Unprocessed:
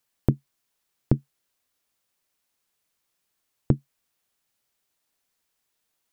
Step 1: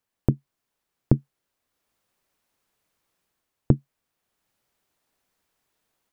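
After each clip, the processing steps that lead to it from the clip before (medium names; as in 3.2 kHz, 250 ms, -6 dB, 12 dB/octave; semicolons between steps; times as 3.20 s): treble shelf 2.1 kHz -9 dB; level rider gain up to 7.5 dB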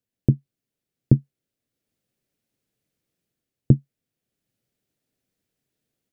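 graphic EQ 125/250/500/1000 Hz +10/+6/+4/-12 dB; trim -5.5 dB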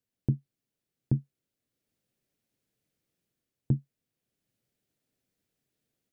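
peak limiter -12.5 dBFS, peak gain reduction 11 dB; trim -2 dB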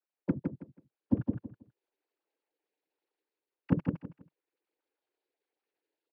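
formants replaced by sine waves; noise-vocoded speech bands 8; on a send: feedback delay 162 ms, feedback 23%, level -4.5 dB; on the sum: trim -1.5 dB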